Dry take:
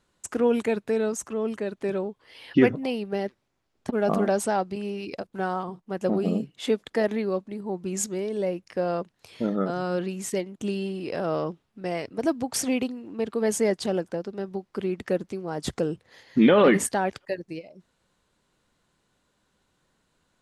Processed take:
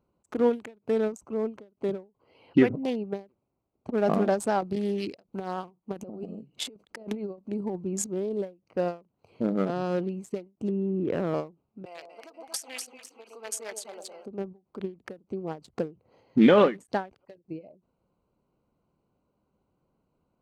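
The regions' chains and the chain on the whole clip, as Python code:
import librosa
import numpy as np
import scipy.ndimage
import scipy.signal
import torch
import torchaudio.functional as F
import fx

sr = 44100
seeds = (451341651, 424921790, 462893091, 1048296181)

y = fx.chain(x, sr, fx.high_shelf(hz=3300.0, db=10.0),
    fx.over_compress(threshold_db=-30.0, ratio=-0.5), at=(4.61, 7.84))
y = fx.chain(y, sr, fx.lowpass(hz=1900.0, slope=24),
    fx.peak_eq(hz=750.0, db=-9.0, octaves=0.94),
    fx.env_flatten(amount_pct=100), at=(10.69, 11.34))
y = fx.chain(y, sr, fx.highpass(hz=1300.0, slope=12),
    fx.high_shelf(hz=3800.0, db=4.5),
    fx.echo_split(split_hz=880.0, low_ms=113, high_ms=243, feedback_pct=52, wet_db=-4.5), at=(11.85, 14.26))
y = fx.wiener(y, sr, points=25)
y = fx.highpass(y, sr, hz=46.0, slope=6)
y = fx.end_taper(y, sr, db_per_s=220.0)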